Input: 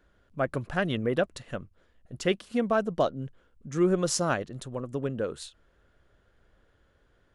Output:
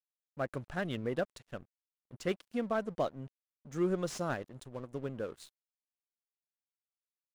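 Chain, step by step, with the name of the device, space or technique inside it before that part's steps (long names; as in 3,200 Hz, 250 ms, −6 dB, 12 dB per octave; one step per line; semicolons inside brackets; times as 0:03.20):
early transistor amplifier (dead-zone distortion −47 dBFS; slew-rate limiting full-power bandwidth 110 Hz)
level −7 dB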